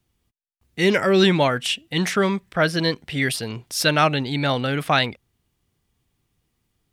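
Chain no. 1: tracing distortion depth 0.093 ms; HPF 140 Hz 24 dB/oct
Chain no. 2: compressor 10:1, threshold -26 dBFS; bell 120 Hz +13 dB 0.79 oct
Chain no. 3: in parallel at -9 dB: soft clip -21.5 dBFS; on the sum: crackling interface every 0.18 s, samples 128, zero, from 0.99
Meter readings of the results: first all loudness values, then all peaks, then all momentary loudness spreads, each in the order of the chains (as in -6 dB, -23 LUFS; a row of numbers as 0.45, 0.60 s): -21.0, -27.5, -19.5 LUFS; -2.5, -13.0, -3.5 dBFS; 8, 5, 7 LU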